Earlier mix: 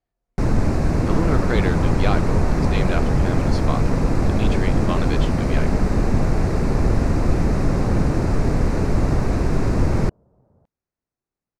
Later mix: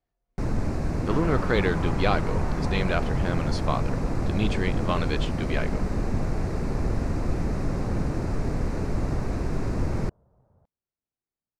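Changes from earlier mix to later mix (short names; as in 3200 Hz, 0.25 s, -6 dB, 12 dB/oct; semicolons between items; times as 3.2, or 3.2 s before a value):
first sound -8.0 dB; second sound: add bell 290 Hz -9 dB 2 oct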